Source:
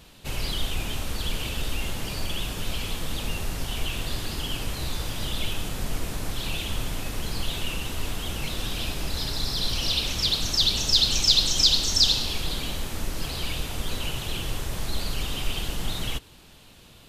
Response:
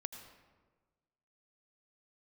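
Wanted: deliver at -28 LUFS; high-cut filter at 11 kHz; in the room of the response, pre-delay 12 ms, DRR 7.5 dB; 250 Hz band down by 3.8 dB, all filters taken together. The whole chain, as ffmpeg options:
-filter_complex "[0:a]lowpass=11000,equalizer=f=250:t=o:g=-5.5,asplit=2[s0][s1];[1:a]atrim=start_sample=2205,adelay=12[s2];[s1][s2]afir=irnorm=-1:irlink=0,volume=0.531[s3];[s0][s3]amix=inputs=2:normalize=0,volume=0.794"

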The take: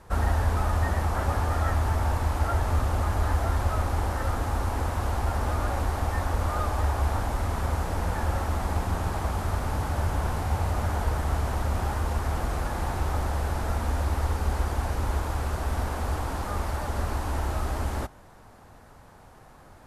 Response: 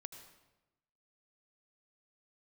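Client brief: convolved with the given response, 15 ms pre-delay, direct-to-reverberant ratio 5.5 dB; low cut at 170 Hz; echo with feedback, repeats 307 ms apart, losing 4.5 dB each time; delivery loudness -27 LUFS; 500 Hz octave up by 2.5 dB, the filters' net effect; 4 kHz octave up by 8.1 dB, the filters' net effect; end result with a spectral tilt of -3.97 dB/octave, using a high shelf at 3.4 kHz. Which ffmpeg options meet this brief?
-filter_complex "[0:a]highpass=170,equalizer=f=500:t=o:g=3,highshelf=f=3400:g=6.5,equalizer=f=4000:t=o:g=5.5,aecho=1:1:307|614|921|1228|1535|1842|2149|2456|2763:0.596|0.357|0.214|0.129|0.0772|0.0463|0.0278|0.0167|0.01,asplit=2[s0][s1];[1:a]atrim=start_sample=2205,adelay=15[s2];[s1][s2]afir=irnorm=-1:irlink=0,volume=0.891[s3];[s0][s3]amix=inputs=2:normalize=0,volume=1.06"

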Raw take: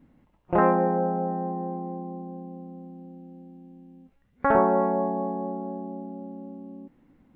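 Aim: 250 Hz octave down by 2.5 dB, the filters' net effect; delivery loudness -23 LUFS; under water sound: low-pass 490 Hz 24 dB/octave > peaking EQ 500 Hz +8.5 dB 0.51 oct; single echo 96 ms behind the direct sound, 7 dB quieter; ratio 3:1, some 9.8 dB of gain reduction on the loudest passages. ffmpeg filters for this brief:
-af "equalizer=f=250:t=o:g=-4.5,acompressor=threshold=0.0355:ratio=3,lowpass=f=490:w=0.5412,lowpass=f=490:w=1.3066,equalizer=f=500:t=o:w=0.51:g=8.5,aecho=1:1:96:0.447,volume=3.55"

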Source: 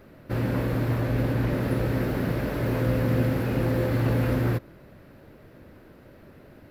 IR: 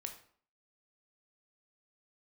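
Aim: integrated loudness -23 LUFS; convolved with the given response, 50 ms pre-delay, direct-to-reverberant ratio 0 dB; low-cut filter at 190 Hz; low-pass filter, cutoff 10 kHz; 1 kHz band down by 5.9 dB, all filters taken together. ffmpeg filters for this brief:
-filter_complex "[0:a]highpass=190,lowpass=10000,equalizer=f=1000:t=o:g=-8,asplit=2[s0][s1];[1:a]atrim=start_sample=2205,adelay=50[s2];[s1][s2]afir=irnorm=-1:irlink=0,volume=1.33[s3];[s0][s3]amix=inputs=2:normalize=0,volume=1.58"

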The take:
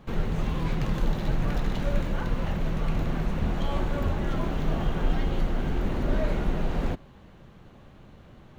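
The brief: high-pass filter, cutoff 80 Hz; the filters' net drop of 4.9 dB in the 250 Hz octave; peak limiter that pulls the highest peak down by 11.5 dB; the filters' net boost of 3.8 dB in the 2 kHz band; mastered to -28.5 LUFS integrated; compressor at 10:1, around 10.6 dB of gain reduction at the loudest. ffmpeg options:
-af "highpass=80,equalizer=f=250:t=o:g=-7.5,equalizer=f=2000:t=o:g=5,acompressor=threshold=0.0126:ratio=10,volume=10.6,alimiter=limit=0.106:level=0:latency=1"

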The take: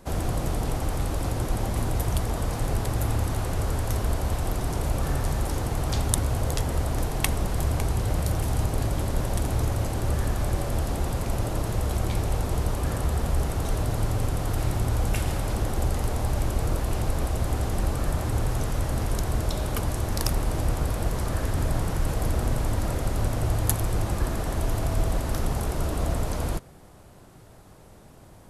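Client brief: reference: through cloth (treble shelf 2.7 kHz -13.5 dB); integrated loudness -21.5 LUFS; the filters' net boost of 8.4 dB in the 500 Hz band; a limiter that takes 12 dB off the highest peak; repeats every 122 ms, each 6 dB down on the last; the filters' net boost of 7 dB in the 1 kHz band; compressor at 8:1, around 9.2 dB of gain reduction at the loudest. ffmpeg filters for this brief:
-af "equalizer=f=500:t=o:g=9,equalizer=f=1000:t=o:g=7.5,acompressor=threshold=0.0447:ratio=8,alimiter=limit=0.0708:level=0:latency=1,highshelf=f=2700:g=-13.5,aecho=1:1:122|244|366|488|610|732:0.501|0.251|0.125|0.0626|0.0313|0.0157,volume=3.76"

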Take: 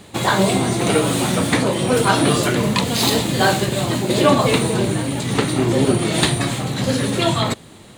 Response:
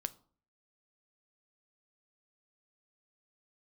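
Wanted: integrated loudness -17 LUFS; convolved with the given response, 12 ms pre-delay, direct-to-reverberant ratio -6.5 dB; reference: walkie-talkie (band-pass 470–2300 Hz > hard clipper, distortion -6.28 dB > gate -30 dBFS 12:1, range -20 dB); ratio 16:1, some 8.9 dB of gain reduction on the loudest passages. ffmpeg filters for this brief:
-filter_complex "[0:a]acompressor=threshold=0.112:ratio=16,asplit=2[s0][s1];[1:a]atrim=start_sample=2205,adelay=12[s2];[s1][s2]afir=irnorm=-1:irlink=0,volume=2.37[s3];[s0][s3]amix=inputs=2:normalize=0,highpass=470,lowpass=2300,asoftclip=type=hard:threshold=0.0596,agate=range=0.1:threshold=0.0316:ratio=12,volume=2.99"

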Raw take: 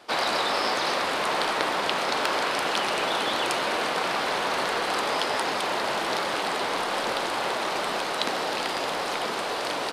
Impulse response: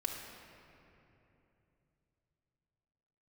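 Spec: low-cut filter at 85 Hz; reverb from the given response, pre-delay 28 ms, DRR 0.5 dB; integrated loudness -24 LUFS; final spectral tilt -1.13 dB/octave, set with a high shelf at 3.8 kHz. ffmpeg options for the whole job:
-filter_complex "[0:a]highpass=85,highshelf=f=3800:g=5,asplit=2[s0][s1];[1:a]atrim=start_sample=2205,adelay=28[s2];[s1][s2]afir=irnorm=-1:irlink=0,volume=0.75[s3];[s0][s3]amix=inputs=2:normalize=0,volume=0.794"

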